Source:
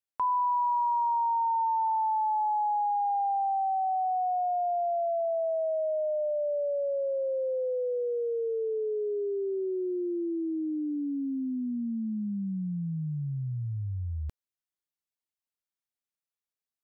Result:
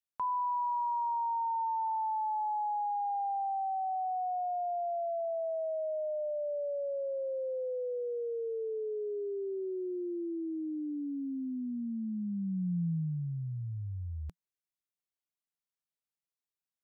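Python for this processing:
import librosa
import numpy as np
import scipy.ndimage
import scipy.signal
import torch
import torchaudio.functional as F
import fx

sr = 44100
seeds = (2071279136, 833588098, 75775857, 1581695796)

y = fx.peak_eq(x, sr, hz=170.0, db=6.5, octaves=0.41)
y = y * 10.0 ** (-5.5 / 20.0)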